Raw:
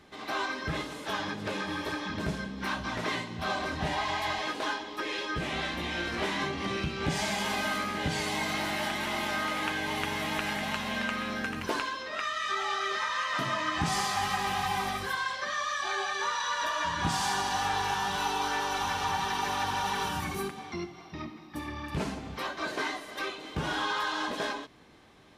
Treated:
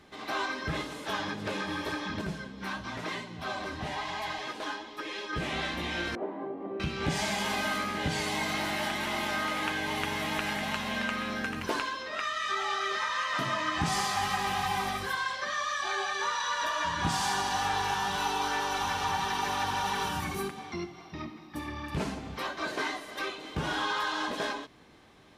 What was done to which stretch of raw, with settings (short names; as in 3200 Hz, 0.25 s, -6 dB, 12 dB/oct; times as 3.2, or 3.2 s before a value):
2.21–5.33 flange 1 Hz, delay 4.5 ms, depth 6.2 ms, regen +43%
6.15–6.8 Butterworth band-pass 450 Hz, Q 0.9